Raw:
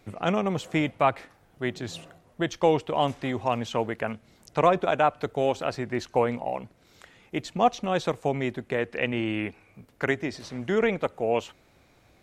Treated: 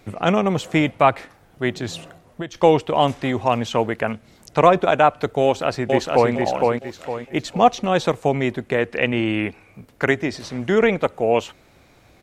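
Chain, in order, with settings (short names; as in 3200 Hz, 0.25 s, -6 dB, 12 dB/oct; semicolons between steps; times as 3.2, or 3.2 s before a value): 1.93–2.55 compressor 4:1, threshold -35 dBFS, peak gain reduction 12 dB; 5.43–6.32 echo throw 0.46 s, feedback 35%, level -2.5 dB; gain +7 dB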